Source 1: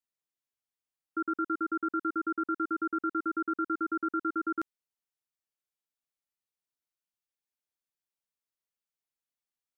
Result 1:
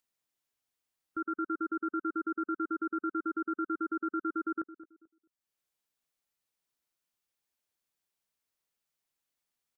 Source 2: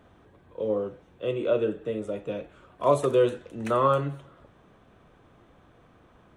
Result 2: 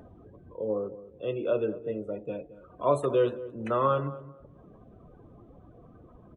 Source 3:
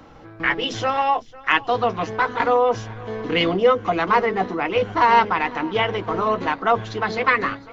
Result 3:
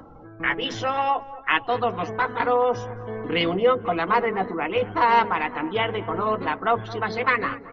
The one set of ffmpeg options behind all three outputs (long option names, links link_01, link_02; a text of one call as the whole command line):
ffmpeg -i in.wav -filter_complex "[0:a]acompressor=mode=upward:threshold=-36dB:ratio=2.5,afftdn=noise_reduction=23:noise_floor=-43,asplit=2[link_01][link_02];[link_02]adelay=219,lowpass=frequency=970:poles=1,volume=-14.5dB,asplit=2[link_03][link_04];[link_04]adelay=219,lowpass=frequency=970:poles=1,volume=0.29,asplit=2[link_05][link_06];[link_06]adelay=219,lowpass=frequency=970:poles=1,volume=0.29[link_07];[link_01][link_03][link_05][link_07]amix=inputs=4:normalize=0,volume=-3dB" out.wav